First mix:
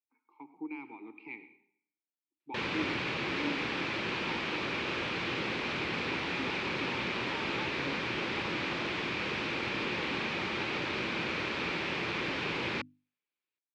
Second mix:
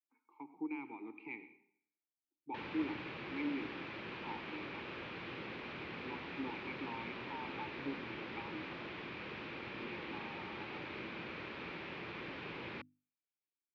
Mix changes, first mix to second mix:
background −10.0 dB
master: add high-frequency loss of the air 200 metres

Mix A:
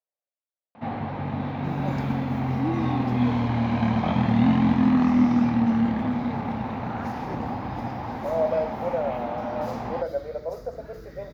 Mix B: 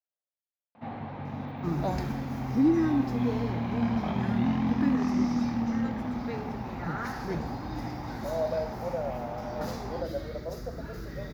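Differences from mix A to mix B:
speech −6.0 dB
first sound −7.5 dB
second sound +5.5 dB

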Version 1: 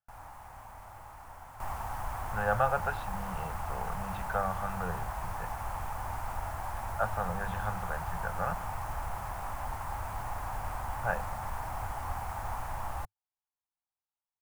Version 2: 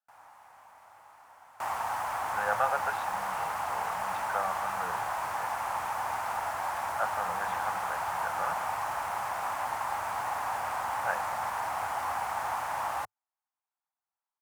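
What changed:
first sound −4.5 dB
second sound +7.5 dB
master: add meter weighting curve A

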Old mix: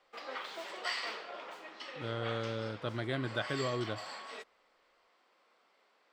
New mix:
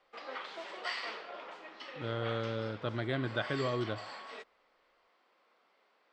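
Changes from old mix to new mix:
speech: send +10.0 dB
master: add high-frequency loss of the air 85 metres

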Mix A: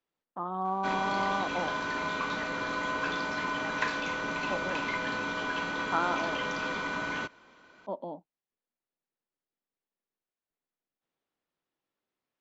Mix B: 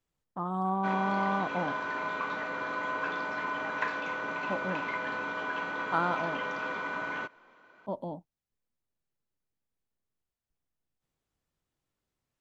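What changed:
background: add band-pass filter 400–2,100 Hz
master: remove three-way crossover with the lows and the highs turned down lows −19 dB, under 210 Hz, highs −18 dB, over 5,100 Hz

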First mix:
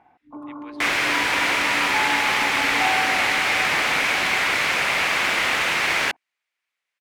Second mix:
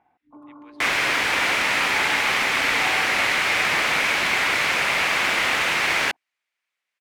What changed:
speech −8.0 dB
first sound −8.5 dB

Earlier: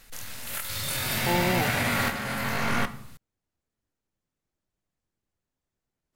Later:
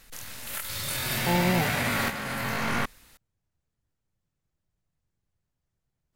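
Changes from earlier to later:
speech: add low shelf with overshoot 190 Hz +6.5 dB, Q 1.5
reverb: off

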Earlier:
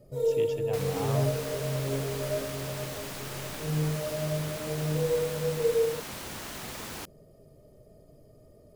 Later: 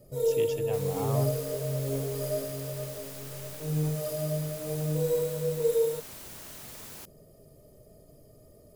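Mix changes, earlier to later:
second sound −10.5 dB
master: add high-shelf EQ 6,400 Hz +11.5 dB

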